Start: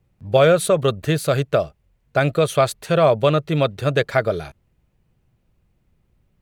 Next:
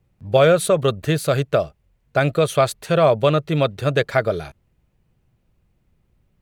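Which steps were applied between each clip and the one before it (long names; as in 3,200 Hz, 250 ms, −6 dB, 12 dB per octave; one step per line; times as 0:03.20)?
no processing that can be heard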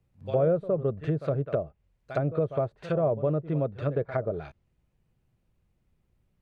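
echo ahead of the sound 64 ms −15 dB
treble cut that deepens with the level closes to 590 Hz, closed at −15 dBFS
level −7.5 dB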